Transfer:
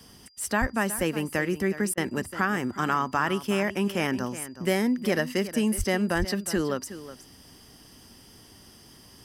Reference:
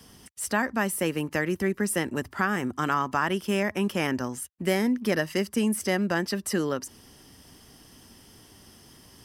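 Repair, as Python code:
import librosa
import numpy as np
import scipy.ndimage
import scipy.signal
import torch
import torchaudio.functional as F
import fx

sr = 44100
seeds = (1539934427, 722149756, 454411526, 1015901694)

y = fx.notch(x, sr, hz=4800.0, q=30.0)
y = fx.highpass(y, sr, hz=140.0, slope=24, at=(0.6, 0.72), fade=0.02)
y = fx.highpass(y, sr, hz=140.0, slope=24, at=(5.77, 5.89), fade=0.02)
y = fx.highpass(y, sr, hz=140.0, slope=24, at=(6.18, 6.3), fade=0.02)
y = fx.fix_interpolate(y, sr, at_s=(1.94,), length_ms=33.0)
y = fx.fix_echo_inverse(y, sr, delay_ms=367, level_db=-14.0)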